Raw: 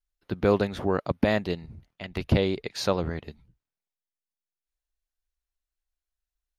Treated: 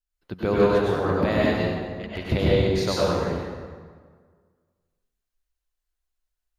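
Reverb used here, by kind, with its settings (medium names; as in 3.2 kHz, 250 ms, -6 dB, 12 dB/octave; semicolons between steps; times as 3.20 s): plate-style reverb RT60 1.7 s, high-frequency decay 0.65×, pre-delay 85 ms, DRR -7 dB; trim -3.5 dB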